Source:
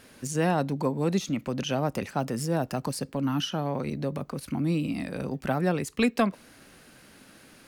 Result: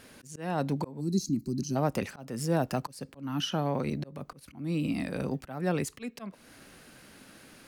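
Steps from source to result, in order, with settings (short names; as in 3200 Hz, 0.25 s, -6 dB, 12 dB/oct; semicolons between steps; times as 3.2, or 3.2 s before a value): spectral gain 1–1.76, 390–3900 Hz -24 dB; auto swell 0.343 s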